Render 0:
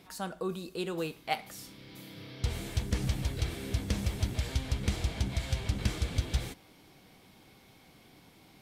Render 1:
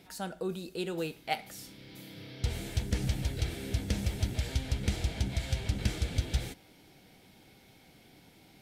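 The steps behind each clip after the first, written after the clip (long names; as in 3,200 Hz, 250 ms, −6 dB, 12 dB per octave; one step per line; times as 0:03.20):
parametric band 1,100 Hz −12 dB 0.22 octaves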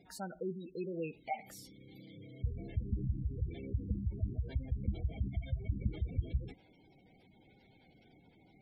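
gate on every frequency bin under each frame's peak −15 dB strong
level −4 dB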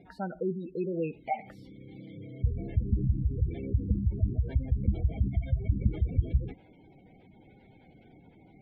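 high-frequency loss of the air 440 metres
level +8.5 dB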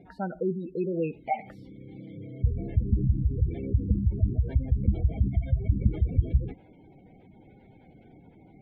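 one half of a high-frequency compander decoder only
level +3 dB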